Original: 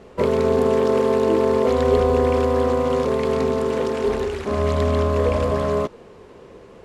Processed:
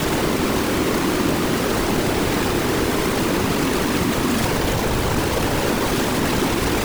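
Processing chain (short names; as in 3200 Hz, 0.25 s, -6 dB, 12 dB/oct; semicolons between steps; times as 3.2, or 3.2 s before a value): infinite clipping; frequency shift -140 Hz; whisperiser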